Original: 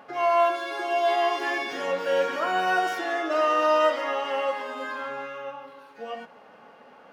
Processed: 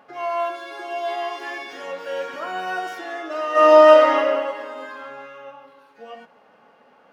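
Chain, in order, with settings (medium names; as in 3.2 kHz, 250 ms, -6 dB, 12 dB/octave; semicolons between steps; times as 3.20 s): 1.23–2.34 s: high-pass 280 Hz 6 dB/octave; 3.51–4.14 s: reverb throw, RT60 1.7 s, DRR -11.5 dB; trim -3.5 dB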